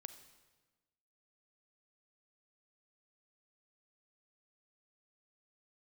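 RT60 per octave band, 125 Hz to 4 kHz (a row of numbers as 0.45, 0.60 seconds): 1.4, 1.5, 1.3, 1.2, 1.2, 1.1 seconds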